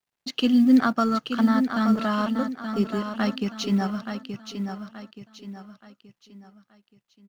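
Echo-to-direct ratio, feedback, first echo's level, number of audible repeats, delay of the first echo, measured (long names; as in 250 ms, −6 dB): −7.0 dB, 38%, −7.5 dB, 4, 876 ms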